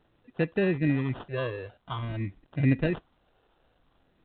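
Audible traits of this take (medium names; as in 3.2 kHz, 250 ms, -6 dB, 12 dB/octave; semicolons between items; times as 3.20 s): phasing stages 6, 0.5 Hz, lowest notch 210–2300 Hz; aliases and images of a low sample rate 2.2 kHz, jitter 0%; A-law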